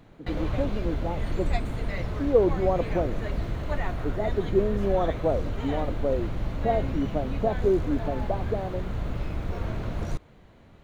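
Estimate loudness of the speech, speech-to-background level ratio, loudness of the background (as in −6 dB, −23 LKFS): −29.0 LKFS, 3.5 dB, −32.5 LKFS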